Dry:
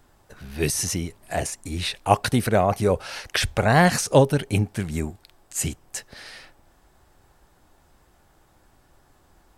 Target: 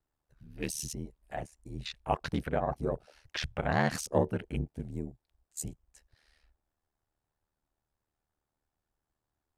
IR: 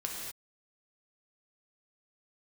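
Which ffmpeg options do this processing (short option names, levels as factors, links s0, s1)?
-af "afwtdn=0.0224,aeval=exprs='val(0)*sin(2*PI*38*n/s)':c=same,volume=0.376"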